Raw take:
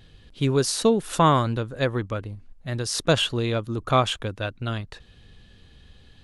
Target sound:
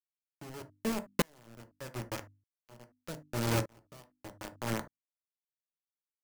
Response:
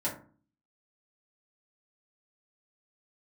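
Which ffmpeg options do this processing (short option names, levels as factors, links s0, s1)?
-filter_complex "[0:a]aeval=exprs='(mod(2.37*val(0)+1,2)-1)/2.37':c=same,acompressor=threshold=0.0891:ratio=8,equalizer=f=9900:t=o:w=2.9:g=-14.5,bandreject=f=710:w=17,asplit=6[s0][s1][s2][s3][s4][s5];[s1]adelay=179,afreqshift=-38,volume=0.168[s6];[s2]adelay=358,afreqshift=-76,volume=0.0861[s7];[s3]adelay=537,afreqshift=-114,volume=0.0437[s8];[s4]adelay=716,afreqshift=-152,volume=0.0224[s9];[s5]adelay=895,afreqshift=-190,volume=0.0114[s10];[s0][s6][s7][s8][s9][s10]amix=inputs=6:normalize=0,acrusher=bits=3:mix=0:aa=0.000001,equalizer=f=3700:t=o:w=0.38:g=-4.5,asplit=2[s11][s12];[1:a]atrim=start_sample=2205,atrim=end_sample=3528[s13];[s12][s13]afir=irnorm=-1:irlink=0,volume=0.282[s14];[s11][s14]amix=inputs=2:normalize=0,acrossover=split=440|3000[s15][s16][s17];[s16]acompressor=threshold=0.0355:ratio=2.5[s18];[s15][s18][s17]amix=inputs=3:normalize=0,bandreject=f=50:t=h:w=6,bandreject=f=100:t=h:w=6,bandreject=f=150:t=h:w=6,bandreject=f=200:t=h:w=6,bandreject=f=250:t=h:w=6,bandreject=f=300:t=h:w=6,aeval=exprs='val(0)*pow(10,-35*if(lt(mod(-0.82*n/s,1),2*abs(-0.82)/1000),1-mod(-0.82*n/s,1)/(2*abs(-0.82)/1000),(mod(-0.82*n/s,1)-2*abs(-0.82)/1000)/(1-2*abs(-0.82)/1000))/20)':c=same,volume=0.841"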